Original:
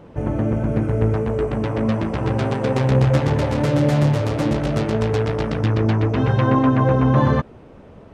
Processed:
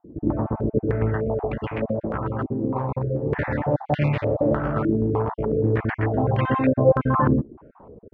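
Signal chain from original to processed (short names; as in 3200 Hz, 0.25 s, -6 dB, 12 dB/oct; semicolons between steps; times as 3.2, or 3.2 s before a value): random spectral dropouts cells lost 27%; 1.65–3.33 compressor, threshold -19 dBFS, peak gain reduction 7.5 dB; stepped low-pass 3.3 Hz 320–2400 Hz; gain -4.5 dB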